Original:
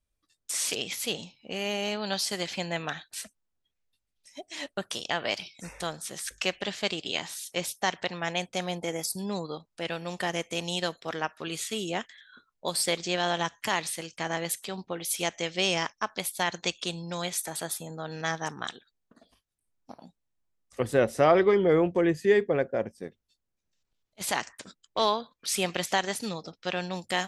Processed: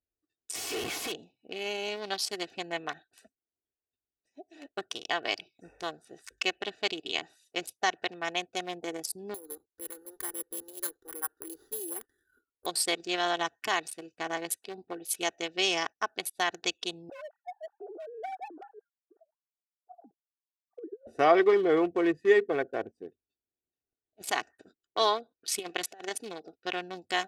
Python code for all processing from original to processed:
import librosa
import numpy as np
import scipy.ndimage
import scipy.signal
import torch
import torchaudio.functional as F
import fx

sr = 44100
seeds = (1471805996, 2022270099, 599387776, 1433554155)

y = fx.chain(x, sr, fx.high_shelf(hz=2800.0, db=3.5),
    fx.schmitt(flips_db=-39.0),
    fx.resample_linear(factor=2), at=(0.55, 1.12))
y = fx.chain(y, sr, fx.halfwave_gain(db=-12.0),
    fx.fixed_phaser(hz=670.0, stages=6),
    fx.resample_bad(factor=4, down='filtered', up='zero_stuff'), at=(9.34, 12.66))
y = fx.chain(y, sr, fx.sine_speech(),
    fx.lowpass(hz=1100.0, slope=24),
    fx.over_compress(threshold_db=-32.0, ratio=-0.5), at=(17.09, 21.07))
y = fx.chain(y, sr, fx.low_shelf(hz=200.0, db=-11.0),
    fx.over_compress(threshold_db=-31.0, ratio=-0.5), at=(25.59, 26.53))
y = fx.wiener(y, sr, points=41)
y = fx.highpass(y, sr, hz=410.0, slope=6)
y = y + 0.55 * np.pad(y, (int(2.7 * sr / 1000.0), 0))[:len(y)]